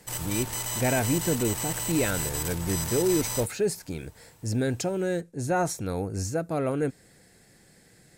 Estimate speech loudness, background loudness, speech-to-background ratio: −29.0 LKFS, −30.0 LKFS, 1.0 dB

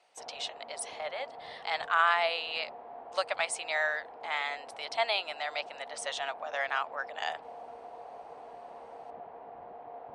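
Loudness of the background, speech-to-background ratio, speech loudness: −47.5 LKFS, 15.0 dB, −32.5 LKFS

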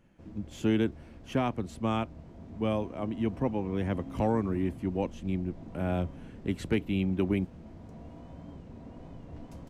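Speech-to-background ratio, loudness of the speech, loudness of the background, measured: 15.0 dB, −32.0 LKFS, −47.0 LKFS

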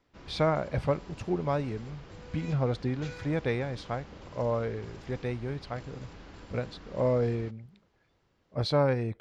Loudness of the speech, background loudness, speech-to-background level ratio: −31.5 LKFS, −48.5 LKFS, 17.0 dB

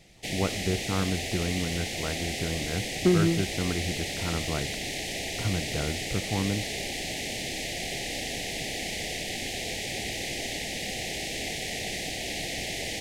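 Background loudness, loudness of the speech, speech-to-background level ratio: −31.5 LKFS, −31.0 LKFS, 0.5 dB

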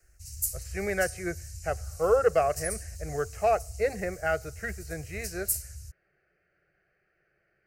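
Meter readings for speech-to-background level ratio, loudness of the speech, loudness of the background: 7.0 dB, −30.0 LKFS, −37.0 LKFS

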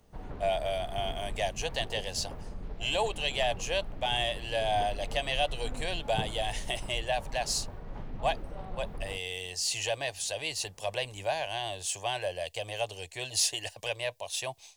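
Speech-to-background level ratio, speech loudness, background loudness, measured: 11.0 dB, −32.5 LKFS, −43.5 LKFS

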